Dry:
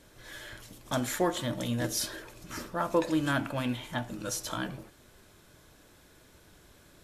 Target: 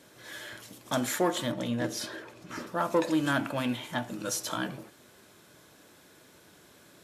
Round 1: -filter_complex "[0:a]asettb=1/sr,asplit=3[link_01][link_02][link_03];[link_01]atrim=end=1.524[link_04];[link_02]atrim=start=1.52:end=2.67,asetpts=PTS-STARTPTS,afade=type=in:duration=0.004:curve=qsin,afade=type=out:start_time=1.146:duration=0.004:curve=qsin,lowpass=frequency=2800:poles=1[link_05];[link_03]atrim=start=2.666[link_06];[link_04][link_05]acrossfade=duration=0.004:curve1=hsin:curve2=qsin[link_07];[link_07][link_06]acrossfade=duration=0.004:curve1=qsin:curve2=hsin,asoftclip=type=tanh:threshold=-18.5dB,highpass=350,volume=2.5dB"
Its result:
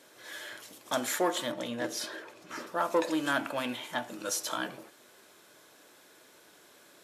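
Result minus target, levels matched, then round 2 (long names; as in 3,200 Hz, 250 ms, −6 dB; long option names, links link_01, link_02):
125 Hz band −10.5 dB
-filter_complex "[0:a]asettb=1/sr,asplit=3[link_01][link_02][link_03];[link_01]atrim=end=1.524[link_04];[link_02]atrim=start=1.52:end=2.67,asetpts=PTS-STARTPTS,afade=type=in:duration=0.004:curve=qsin,afade=type=out:start_time=1.146:duration=0.004:curve=qsin,lowpass=frequency=2800:poles=1[link_05];[link_03]atrim=start=2.666[link_06];[link_04][link_05]acrossfade=duration=0.004:curve1=hsin:curve2=qsin[link_07];[link_07][link_06]acrossfade=duration=0.004:curve1=qsin:curve2=hsin,asoftclip=type=tanh:threshold=-18.5dB,highpass=150,volume=2.5dB"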